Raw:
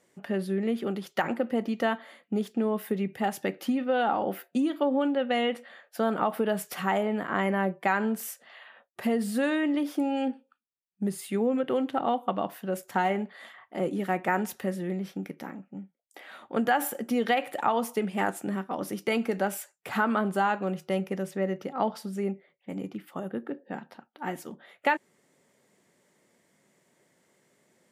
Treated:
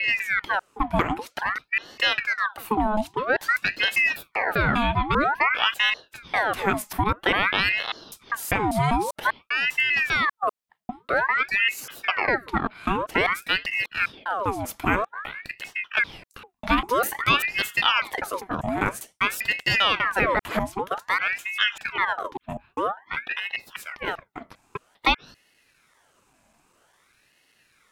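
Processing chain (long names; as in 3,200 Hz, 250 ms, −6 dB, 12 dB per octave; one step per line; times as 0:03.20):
slices reordered back to front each 198 ms, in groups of 4
ring modulator whose carrier an LFO sweeps 1,400 Hz, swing 70%, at 0.51 Hz
level +7 dB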